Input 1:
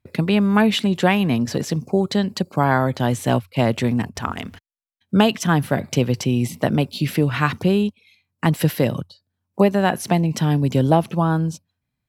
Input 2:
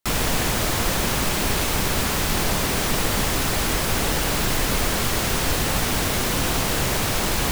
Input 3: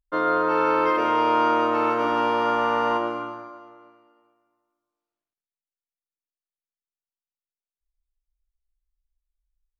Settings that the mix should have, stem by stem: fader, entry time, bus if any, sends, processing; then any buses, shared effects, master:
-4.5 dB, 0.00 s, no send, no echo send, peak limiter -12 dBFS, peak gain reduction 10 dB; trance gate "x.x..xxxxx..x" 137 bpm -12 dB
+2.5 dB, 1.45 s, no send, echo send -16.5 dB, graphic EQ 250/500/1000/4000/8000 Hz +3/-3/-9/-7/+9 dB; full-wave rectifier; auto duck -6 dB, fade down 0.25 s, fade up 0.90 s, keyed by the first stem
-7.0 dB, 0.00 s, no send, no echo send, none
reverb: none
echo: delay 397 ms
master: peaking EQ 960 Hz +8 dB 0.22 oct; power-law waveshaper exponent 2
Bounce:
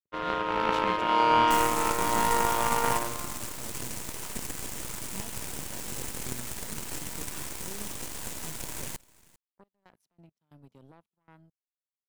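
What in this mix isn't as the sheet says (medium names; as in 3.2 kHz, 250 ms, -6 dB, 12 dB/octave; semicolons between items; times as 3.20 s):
stem 1 -4.5 dB -> -13.0 dB; stem 3 -7.0 dB -> -0.5 dB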